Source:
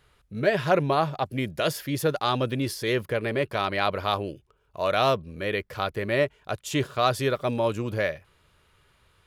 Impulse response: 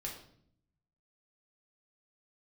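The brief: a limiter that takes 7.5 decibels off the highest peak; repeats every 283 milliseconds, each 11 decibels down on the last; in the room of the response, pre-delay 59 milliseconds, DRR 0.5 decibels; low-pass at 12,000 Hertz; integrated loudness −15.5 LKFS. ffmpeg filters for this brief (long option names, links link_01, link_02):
-filter_complex "[0:a]lowpass=12000,alimiter=limit=-15.5dB:level=0:latency=1,aecho=1:1:283|566|849:0.282|0.0789|0.0221,asplit=2[link_01][link_02];[1:a]atrim=start_sample=2205,adelay=59[link_03];[link_02][link_03]afir=irnorm=-1:irlink=0,volume=0dB[link_04];[link_01][link_04]amix=inputs=2:normalize=0,volume=9.5dB"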